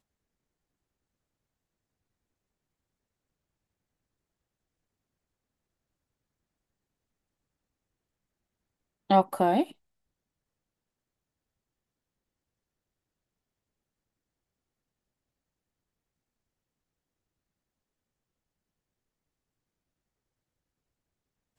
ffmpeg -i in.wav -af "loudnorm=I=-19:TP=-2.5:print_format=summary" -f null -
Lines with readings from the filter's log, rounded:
Input Integrated:    -25.8 LUFS
Input True Peak:      -7.7 dBTP
Input LRA:             0.0 LU
Input Threshold:     -36.6 LUFS